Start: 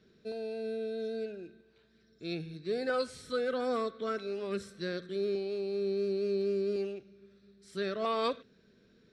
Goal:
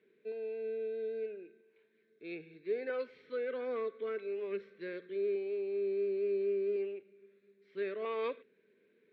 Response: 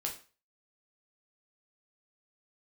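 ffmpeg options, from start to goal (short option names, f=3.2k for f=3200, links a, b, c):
-af "highpass=340,equalizer=f=420:t=q:w=4:g=7,equalizer=f=710:t=q:w=4:g=-9,equalizer=f=1.3k:t=q:w=4:g=-8,equalizer=f=2.2k:t=q:w=4:g=8,lowpass=f=2.8k:w=0.5412,lowpass=f=2.8k:w=1.3066,volume=-4.5dB"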